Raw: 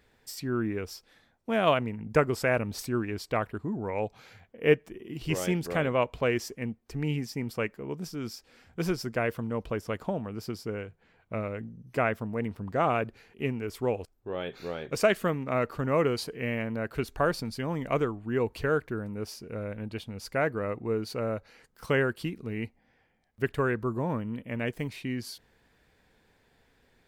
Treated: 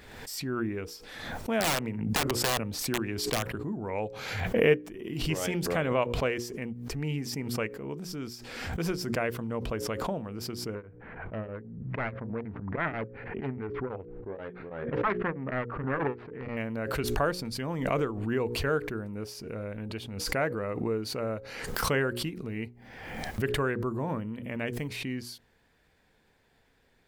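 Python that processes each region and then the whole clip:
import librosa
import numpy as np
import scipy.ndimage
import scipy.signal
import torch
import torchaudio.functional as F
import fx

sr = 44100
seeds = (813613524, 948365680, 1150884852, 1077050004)

y = fx.chain(x, sr, fx.overflow_wrap(gain_db=19.5),
    fx.band_squash(depth_pct=40), at=(1.6, 3.55))
y = fx.chain(y, sr, fx.self_delay(depth_ms=0.67),
    fx.lowpass(hz=2000.0, slope=24),
    fx.tremolo_abs(hz=6.2), at=(10.75, 16.57))
y = fx.hum_notches(y, sr, base_hz=60, count=9)
y = fx.pre_swell(y, sr, db_per_s=43.0)
y = y * librosa.db_to_amplitude(-1.5)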